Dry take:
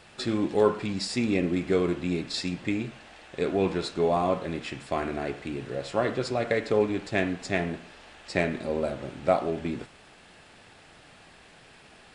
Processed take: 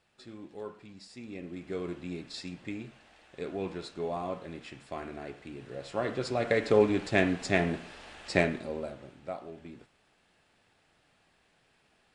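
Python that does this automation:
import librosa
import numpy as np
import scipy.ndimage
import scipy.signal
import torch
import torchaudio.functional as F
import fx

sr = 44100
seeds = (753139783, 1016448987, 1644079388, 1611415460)

y = fx.gain(x, sr, db=fx.line((1.13, -19.5), (1.9, -10.0), (5.55, -10.0), (6.73, 1.0), (8.38, 1.0), (8.67, -6.5), (9.31, -15.5)))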